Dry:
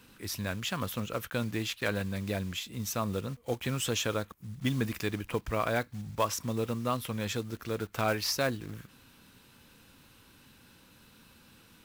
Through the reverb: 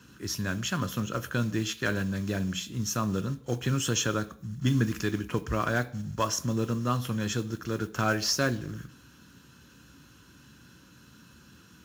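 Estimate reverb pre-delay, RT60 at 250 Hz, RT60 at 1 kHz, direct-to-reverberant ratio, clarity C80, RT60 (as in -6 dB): 3 ms, 0.55 s, 0.50 s, 10.0 dB, 21.5 dB, 0.55 s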